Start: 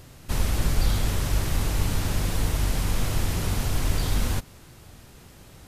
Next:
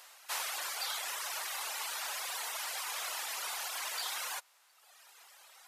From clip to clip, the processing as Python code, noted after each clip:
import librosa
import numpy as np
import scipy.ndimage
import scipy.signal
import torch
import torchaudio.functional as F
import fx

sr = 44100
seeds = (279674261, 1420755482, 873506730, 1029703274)

y = fx.dereverb_blind(x, sr, rt60_s=1.4)
y = scipy.signal.sosfilt(scipy.signal.butter(4, 770.0, 'highpass', fs=sr, output='sos'), y)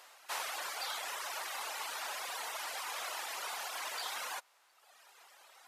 y = fx.tilt_eq(x, sr, slope=-2.0)
y = y * 10.0 ** (1.0 / 20.0)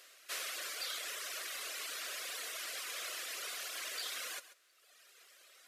y = fx.fixed_phaser(x, sr, hz=360.0, stages=4)
y = y + 10.0 ** (-15.0 / 20.0) * np.pad(y, (int(137 * sr / 1000.0), 0))[:len(y)]
y = y * 10.0 ** (1.0 / 20.0)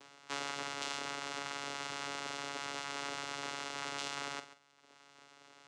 y = fx.vocoder(x, sr, bands=4, carrier='saw', carrier_hz=141.0)
y = fx.doubler(y, sr, ms=44.0, db=-11.0)
y = y * 10.0 ** (2.5 / 20.0)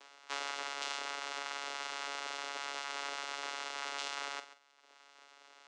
y = fx.bandpass_edges(x, sr, low_hz=490.0, high_hz=7700.0)
y = y * 10.0 ** (1.0 / 20.0)